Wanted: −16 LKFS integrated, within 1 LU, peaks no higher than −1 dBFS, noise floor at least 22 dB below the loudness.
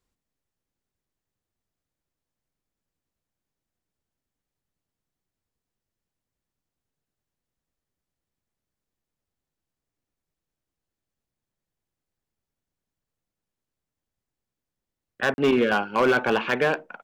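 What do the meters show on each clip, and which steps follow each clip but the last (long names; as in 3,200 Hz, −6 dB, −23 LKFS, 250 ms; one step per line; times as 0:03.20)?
share of clipped samples 0.3%; peaks flattened at −14.5 dBFS; number of dropouts 1; longest dropout 41 ms; integrated loudness −22.5 LKFS; sample peak −14.5 dBFS; target loudness −16.0 LKFS
→ clipped peaks rebuilt −14.5 dBFS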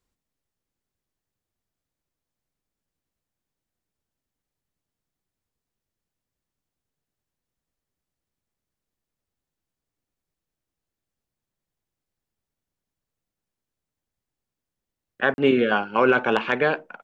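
share of clipped samples 0.0%; number of dropouts 1; longest dropout 41 ms
→ repair the gap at 0:15.34, 41 ms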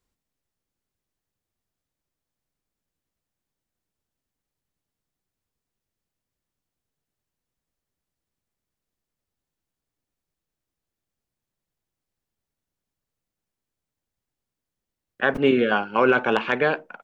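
number of dropouts 0; integrated loudness −21.5 LKFS; sample peak −5.5 dBFS; target loudness −16.0 LKFS
→ level +5.5 dB
brickwall limiter −1 dBFS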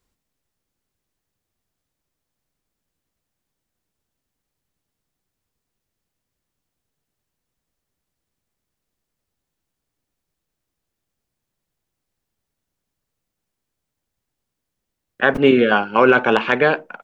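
integrated loudness −16.0 LKFS; sample peak −1.0 dBFS; background noise floor −81 dBFS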